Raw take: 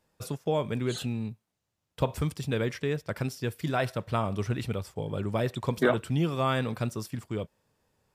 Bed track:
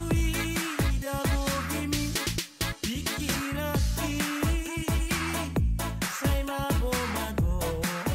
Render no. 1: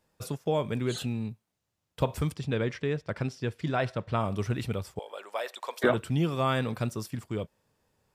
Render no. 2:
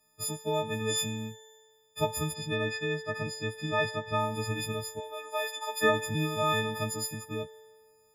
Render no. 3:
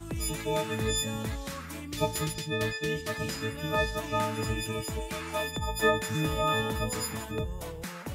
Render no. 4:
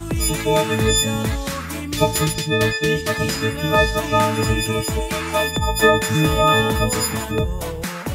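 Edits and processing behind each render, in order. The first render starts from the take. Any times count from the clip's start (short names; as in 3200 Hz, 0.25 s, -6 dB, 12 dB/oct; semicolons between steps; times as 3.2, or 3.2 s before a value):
2.35–4.2 air absorption 84 m; 4.99–5.84 HPF 580 Hz 24 dB/oct
frequency quantiser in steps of 6 st; resonator 88 Hz, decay 1.8 s, harmonics all, mix 40%
add bed track -9.5 dB
gain +12 dB; limiter -3 dBFS, peak gain reduction 3 dB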